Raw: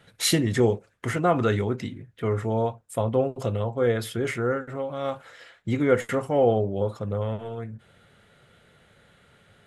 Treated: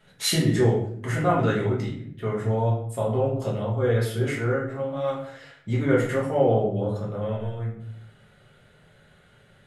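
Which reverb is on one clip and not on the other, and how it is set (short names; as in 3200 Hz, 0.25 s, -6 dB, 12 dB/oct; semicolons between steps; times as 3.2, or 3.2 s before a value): shoebox room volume 88 m³, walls mixed, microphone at 1.4 m; gain -6 dB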